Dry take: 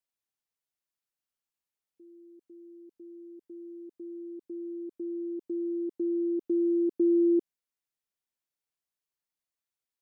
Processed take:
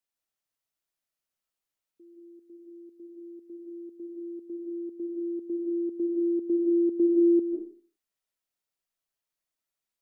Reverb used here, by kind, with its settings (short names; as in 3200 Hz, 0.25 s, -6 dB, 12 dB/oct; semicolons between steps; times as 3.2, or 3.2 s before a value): digital reverb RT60 0.42 s, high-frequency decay 0.5×, pre-delay 0.11 s, DRR 0.5 dB